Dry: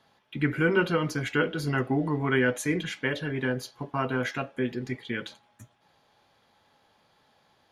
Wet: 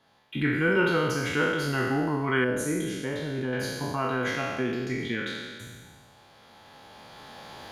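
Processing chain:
peak hold with a decay on every bin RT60 1.35 s
camcorder AGC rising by 8.9 dB per second
0:02.44–0:03.53: parametric band 2,200 Hz −10.5 dB 1.9 octaves
level −2.5 dB

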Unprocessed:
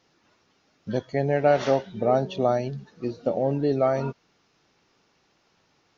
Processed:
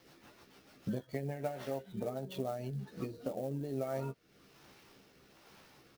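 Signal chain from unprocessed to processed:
downward compressor 16 to 1, threshold −40 dBFS, peak gain reduction 26 dB
rotating-speaker cabinet horn 6.7 Hz, later 1.2 Hz, at 0:02.60
double-tracking delay 15 ms −6 dB
converter with an unsteady clock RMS 0.022 ms
level +6.5 dB

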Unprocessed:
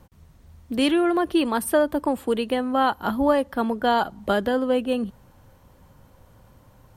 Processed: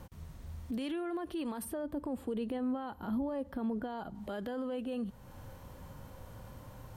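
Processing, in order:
downward compressor 2 to 1, threshold −42 dBFS, peak gain reduction 15 dB
harmonic and percussive parts rebalanced harmonic +5 dB
brickwall limiter −30.5 dBFS, peak gain reduction 13.5 dB
0:01.65–0:04.15: tilt shelving filter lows +5 dB, about 640 Hz

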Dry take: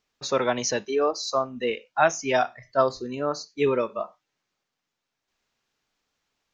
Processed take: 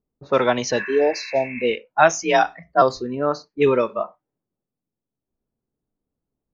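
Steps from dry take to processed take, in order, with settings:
0:02.23–0:02.82: frequency shifter +45 Hz
low-pass that shuts in the quiet parts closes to 330 Hz, open at −19 dBFS
0:00.78–0:01.69: healed spectral selection 930–2,700 Hz both
level +5.5 dB

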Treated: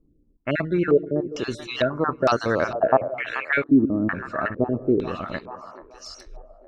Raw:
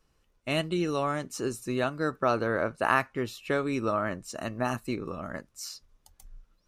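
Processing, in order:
time-frequency cells dropped at random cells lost 37%
on a send: echo with a time of its own for lows and highs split 340 Hz, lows 114 ms, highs 433 ms, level −14 dB
on the sum: low-pass on a step sequencer 2.2 Hz 290–5,400 Hz
level +6.5 dB

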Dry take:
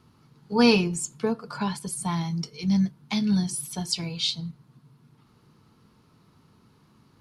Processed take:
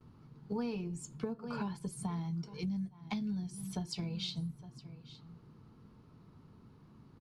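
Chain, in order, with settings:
noise gate with hold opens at −51 dBFS
low-shelf EQ 190 Hz −5.5 dB
floating-point word with a short mantissa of 4 bits
spectral tilt −3 dB per octave
single-tap delay 860 ms −21.5 dB
downward compressor 12 to 1, threshold −31 dBFS, peak gain reduction 20 dB
level −3.5 dB

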